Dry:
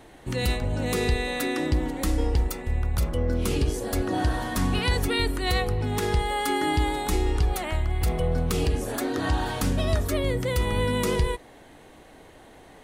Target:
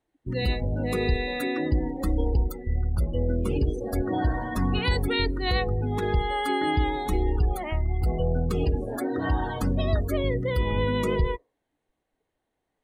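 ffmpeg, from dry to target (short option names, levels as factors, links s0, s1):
-af "afftdn=nr=31:nf=-31"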